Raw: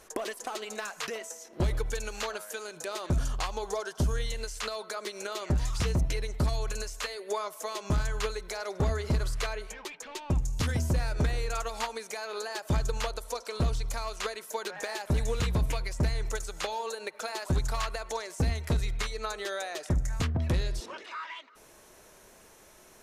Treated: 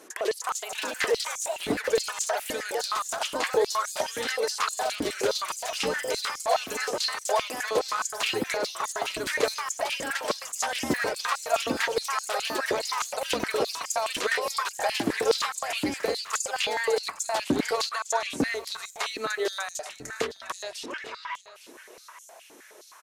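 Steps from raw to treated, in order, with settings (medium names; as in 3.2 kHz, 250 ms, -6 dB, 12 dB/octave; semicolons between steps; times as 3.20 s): delay 854 ms -15.5 dB; ever faster or slower copies 354 ms, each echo +3 st, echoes 2; step-sequenced high-pass 9.6 Hz 280–6900 Hz; trim +2.5 dB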